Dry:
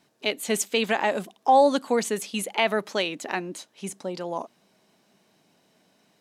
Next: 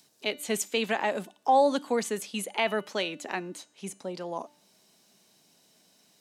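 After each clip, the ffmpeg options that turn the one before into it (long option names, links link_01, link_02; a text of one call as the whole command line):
ffmpeg -i in.wav -filter_complex "[0:a]bandreject=frequency=294.6:width_type=h:width=4,bandreject=frequency=589.2:width_type=h:width=4,bandreject=frequency=883.8:width_type=h:width=4,bandreject=frequency=1178.4:width_type=h:width=4,bandreject=frequency=1473:width_type=h:width=4,bandreject=frequency=1767.6:width_type=h:width=4,bandreject=frequency=2062.2:width_type=h:width=4,bandreject=frequency=2356.8:width_type=h:width=4,bandreject=frequency=2651.4:width_type=h:width=4,bandreject=frequency=2946:width_type=h:width=4,bandreject=frequency=3240.6:width_type=h:width=4,bandreject=frequency=3535.2:width_type=h:width=4,bandreject=frequency=3829.8:width_type=h:width=4,bandreject=frequency=4124.4:width_type=h:width=4,bandreject=frequency=4419:width_type=h:width=4,bandreject=frequency=4713.6:width_type=h:width=4,bandreject=frequency=5008.2:width_type=h:width=4,bandreject=frequency=5302.8:width_type=h:width=4,bandreject=frequency=5597.4:width_type=h:width=4,bandreject=frequency=5892:width_type=h:width=4,bandreject=frequency=6186.6:width_type=h:width=4,bandreject=frequency=6481.2:width_type=h:width=4,bandreject=frequency=6775.8:width_type=h:width=4,bandreject=frequency=7070.4:width_type=h:width=4,bandreject=frequency=7365:width_type=h:width=4,bandreject=frequency=7659.6:width_type=h:width=4,bandreject=frequency=7954.2:width_type=h:width=4,bandreject=frequency=8248.8:width_type=h:width=4,bandreject=frequency=8543.4:width_type=h:width=4,bandreject=frequency=8838:width_type=h:width=4,bandreject=frequency=9132.6:width_type=h:width=4,bandreject=frequency=9427.2:width_type=h:width=4,bandreject=frequency=9721.8:width_type=h:width=4,acrossover=split=330|3900[link_01][link_02][link_03];[link_03]acompressor=mode=upward:threshold=-49dB:ratio=2.5[link_04];[link_01][link_02][link_04]amix=inputs=3:normalize=0,volume=-4dB" out.wav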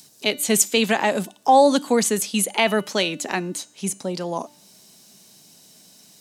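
ffmpeg -i in.wav -af "bass=frequency=250:gain=7,treble=frequency=4000:gain=8,volume=7dB" out.wav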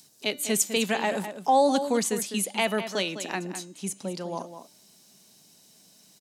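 ffmpeg -i in.wav -filter_complex "[0:a]asplit=2[link_01][link_02];[link_02]adelay=204.1,volume=-10dB,highshelf=frequency=4000:gain=-4.59[link_03];[link_01][link_03]amix=inputs=2:normalize=0,volume=-6.5dB" out.wav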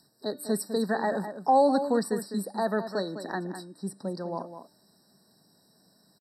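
ffmpeg -i in.wav -af "highshelf=frequency=3200:gain=-9,aresample=32000,aresample=44100,afftfilt=real='re*eq(mod(floor(b*sr/1024/1900),2),0)':imag='im*eq(mod(floor(b*sr/1024/1900),2),0)':win_size=1024:overlap=0.75" out.wav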